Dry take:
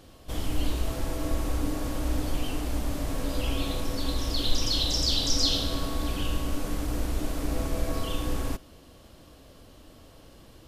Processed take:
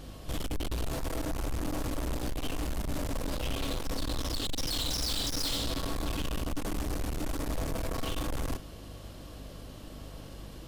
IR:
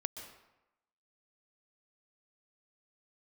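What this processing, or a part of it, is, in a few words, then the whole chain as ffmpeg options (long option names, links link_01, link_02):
valve amplifier with mains hum: -af "aeval=exprs='(tanh(56.2*val(0)+0.25)-tanh(0.25))/56.2':channel_layout=same,aeval=exprs='val(0)+0.00282*(sin(2*PI*50*n/s)+sin(2*PI*2*50*n/s)/2+sin(2*PI*3*50*n/s)/3+sin(2*PI*4*50*n/s)/4+sin(2*PI*5*50*n/s)/5)':channel_layout=same,volume=5dB"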